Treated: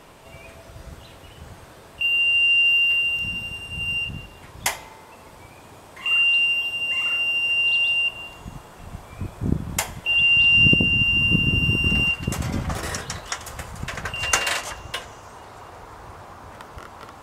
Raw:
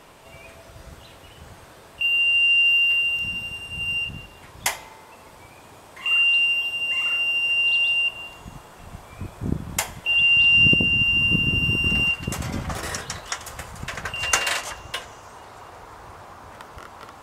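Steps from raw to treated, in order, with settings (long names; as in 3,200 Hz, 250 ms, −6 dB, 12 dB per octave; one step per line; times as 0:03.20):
low-shelf EQ 410 Hz +3.5 dB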